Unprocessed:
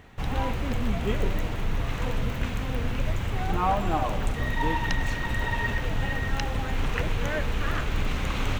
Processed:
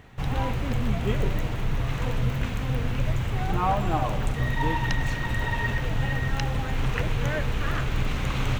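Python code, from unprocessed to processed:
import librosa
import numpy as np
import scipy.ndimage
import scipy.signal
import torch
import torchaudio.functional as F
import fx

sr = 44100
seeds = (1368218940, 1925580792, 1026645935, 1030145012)

y = fx.peak_eq(x, sr, hz=130.0, db=11.5, octaves=0.22)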